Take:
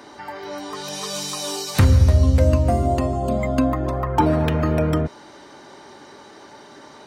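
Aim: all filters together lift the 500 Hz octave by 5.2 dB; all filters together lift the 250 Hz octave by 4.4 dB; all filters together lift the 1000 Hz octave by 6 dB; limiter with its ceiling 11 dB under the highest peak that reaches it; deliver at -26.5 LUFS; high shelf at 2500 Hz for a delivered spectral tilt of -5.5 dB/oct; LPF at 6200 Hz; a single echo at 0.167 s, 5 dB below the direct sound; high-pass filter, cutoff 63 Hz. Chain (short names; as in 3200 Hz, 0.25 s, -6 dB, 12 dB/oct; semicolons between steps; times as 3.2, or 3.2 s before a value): HPF 63 Hz; LPF 6200 Hz; bell 250 Hz +4 dB; bell 500 Hz +3.5 dB; bell 1000 Hz +5 dB; high shelf 2500 Hz +8 dB; limiter -10.5 dBFS; echo 0.167 s -5 dB; gain -7 dB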